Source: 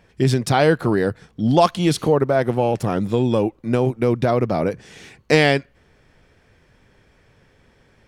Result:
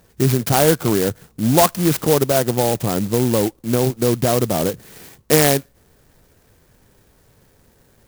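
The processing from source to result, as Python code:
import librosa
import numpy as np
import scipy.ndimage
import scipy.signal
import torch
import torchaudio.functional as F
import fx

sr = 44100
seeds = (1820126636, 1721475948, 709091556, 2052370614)

y = fx.high_shelf(x, sr, hz=9100.0, db=9.0)
y = fx.clock_jitter(y, sr, seeds[0], jitter_ms=0.11)
y = y * librosa.db_to_amplitude(1.0)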